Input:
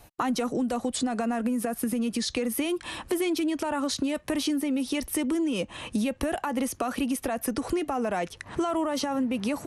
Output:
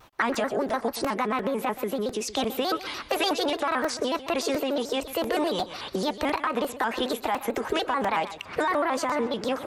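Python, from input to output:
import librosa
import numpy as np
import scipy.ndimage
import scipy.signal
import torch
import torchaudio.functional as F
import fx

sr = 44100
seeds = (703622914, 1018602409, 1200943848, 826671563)

p1 = fx.bass_treble(x, sr, bass_db=-9, treble_db=-10)
p2 = fx.formant_shift(p1, sr, semitones=5)
p3 = p2 + fx.echo_feedback(p2, sr, ms=125, feedback_pct=24, wet_db=-14.0, dry=0)
p4 = fx.buffer_crackle(p3, sr, first_s=0.34, period_s=0.35, block=128, kind='repeat')
p5 = fx.vibrato_shape(p4, sr, shape='square', rate_hz=6.8, depth_cents=160.0)
y = p5 * 10.0 ** (3.5 / 20.0)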